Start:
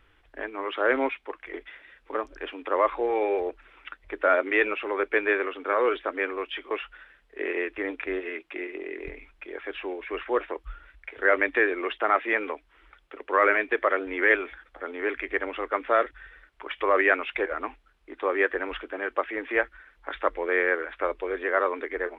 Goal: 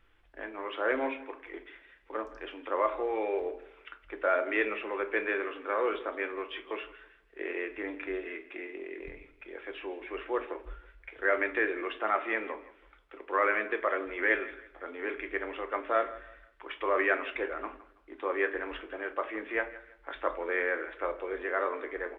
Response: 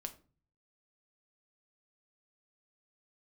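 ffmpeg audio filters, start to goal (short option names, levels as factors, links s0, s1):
-filter_complex "[0:a]aecho=1:1:164|328|492:0.133|0.04|0.012[s0];[1:a]atrim=start_sample=2205[s1];[s0][s1]afir=irnorm=-1:irlink=0,volume=0.708"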